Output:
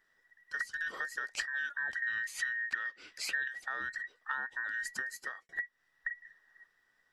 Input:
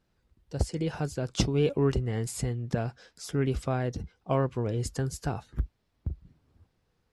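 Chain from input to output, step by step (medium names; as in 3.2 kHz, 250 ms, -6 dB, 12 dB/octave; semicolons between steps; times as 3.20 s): every band turned upside down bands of 2 kHz; 2.02–3.48 s: peaking EQ 2.5 kHz +14.5 dB 1.6 oct; 4.91–5.49 s: fade out; compression 6:1, threshold -34 dBFS, peak gain reduction 20.5 dB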